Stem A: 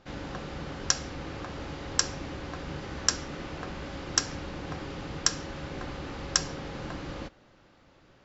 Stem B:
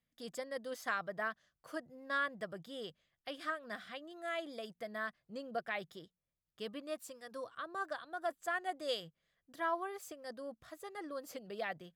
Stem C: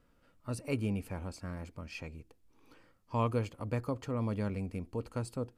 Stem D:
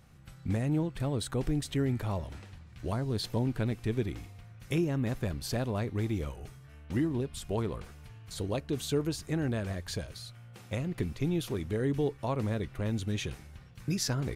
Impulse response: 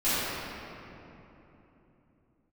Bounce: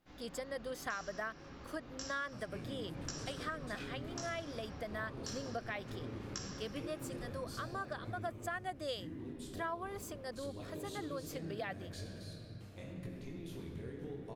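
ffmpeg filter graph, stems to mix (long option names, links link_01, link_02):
-filter_complex "[0:a]flanger=delay=15.5:depth=7.1:speed=0.65,volume=-17dB,asplit=2[link_01][link_02];[link_02]volume=-10dB[link_03];[1:a]volume=2.5dB,asplit=2[link_04][link_05];[2:a]acompressor=threshold=-43dB:ratio=6,flanger=delay=22.5:depth=7.4:speed=0.17,adelay=1850,volume=-2dB[link_06];[3:a]acompressor=threshold=-33dB:ratio=6,flanger=delay=19.5:depth=5:speed=0.81,adelay=2050,volume=-10.5dB,asplit=2[link_07][link_08];[link_08]volume=-12dB[link_09];[link_05]apad=whole_len=363594[link_10];[link_01][link_10]sidechaincompress=threshold=-50dB:ratio=8:attack=16:release=257[link_11];[4:a]atrim=start_sample=2205[link_12];[link_03][link_09]amix=inputs=2:normalize=0[link_13];[link_13][link_12]afir=irnorm=-1:irlink=0[link_14];[link_11][link_04][link_06][link_07][link_14]amix=inputs=5:normalize=0,acompressor=threshold=-38dB:ratio=3"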